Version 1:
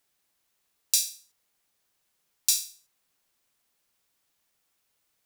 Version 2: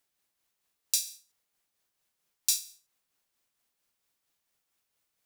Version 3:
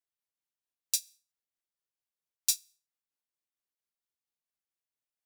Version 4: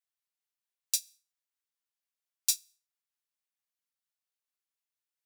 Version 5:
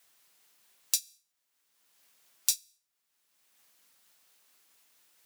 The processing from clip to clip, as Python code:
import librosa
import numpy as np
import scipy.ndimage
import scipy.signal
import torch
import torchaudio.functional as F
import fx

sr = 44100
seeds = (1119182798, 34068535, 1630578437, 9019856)

y1 = x * (1.0 - 0.38 / 2.0 + 0.38 / 2.0 * np.cos(2.0 * np.pi * 4.4 * (np.arange(len(x)) / sr)))
y1 = F.gain(torch.from_numpy(y1), -3.0).numpy()
y2 = fx.upward_expand(y1, sr, threshold_db=-34.0, expansion=2.5)
y2 = F.gain(torch.from_numpy(y2), 1.0).numpy()
y3 = scipy.signal.sosfilt(scipy.signal.butter(2, 920.0, 'highpass', fs=sr, output='sos'), y2)
y4 = fx.band_squash(y3, sr, depth_pct=70)
y4 = F.gain(torch.from_numpy(y4), 4.5).numpy()